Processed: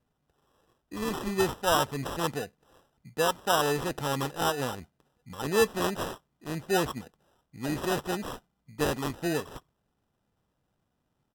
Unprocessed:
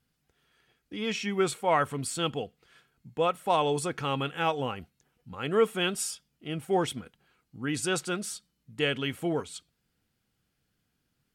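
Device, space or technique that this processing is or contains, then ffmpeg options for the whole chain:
crushed at another speed: -af "asetrate=55125,aresample=44100,acrusher=samples=16:mix=1:aa=0.000001,asetrate=35280,aresample=44100"

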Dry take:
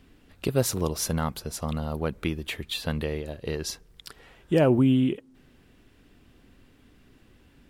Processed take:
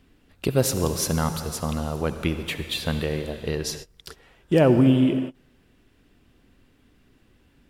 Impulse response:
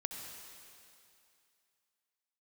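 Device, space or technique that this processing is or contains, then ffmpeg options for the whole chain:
keyed gated reverb: -filter_complex "[0:a]asplit=3[s0][s1][s2];[1:a]atrim=start_sample=2205[s3];[s1][s3]afir=irnorm=-1:irlink=0[s4];[s2]apad=whole_len=339333[s5];[s4][s5]sidechaingate=range=0.0224:threshold=0.00631:ratio=16:detection=peak,volume=1.12[s6];[s0][s6]amix=inputs=2:normalize=0,volume=0.75"

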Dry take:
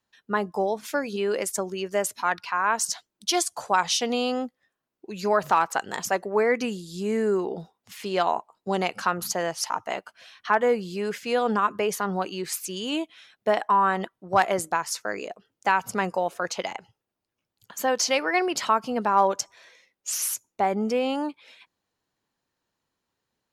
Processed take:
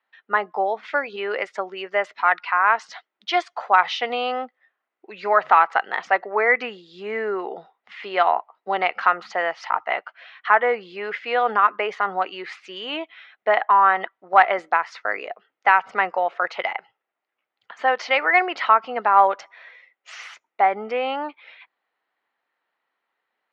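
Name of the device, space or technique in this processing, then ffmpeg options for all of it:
phone earpiece: -af "highpass=490,equalizer=f=750:t=q:w=4:g=5,equalizer=f=1300:t=q:w=4:g=6,equalizer=f=2000:t=q:w=4:g=9,lowpass=f=3400:w=0.5412,lowpass=f=3400:w=1.3066,volume=1.33"

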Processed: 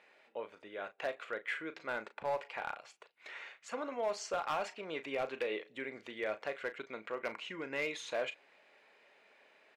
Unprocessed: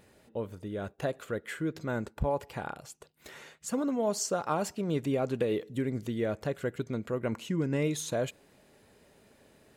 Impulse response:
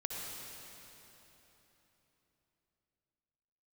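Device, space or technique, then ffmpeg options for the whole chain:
megaphone: -filter_complex "[0:a]highpass=690,lowpass=3300,equalizer=f=2300:t=o:w=0.53:g=7,asoftclip=type=hard:threshold=0.0376,asplit=2[s0][s1];[s1]adelay=37,volume=0.251[s2];[s0][s2]amix=inputs=2:normalize=0"

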